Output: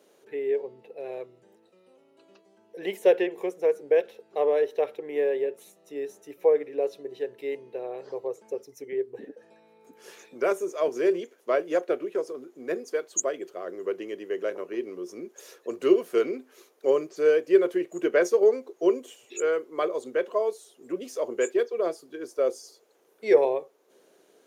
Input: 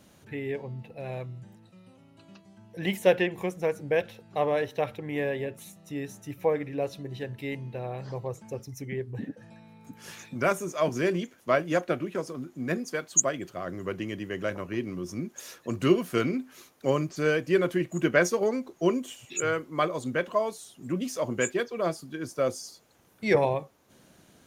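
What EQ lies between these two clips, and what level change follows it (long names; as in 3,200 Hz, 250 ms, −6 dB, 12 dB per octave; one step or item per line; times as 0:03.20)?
high-pass with resonance 420 Hz, resonance Q 4.9
−5.5 dB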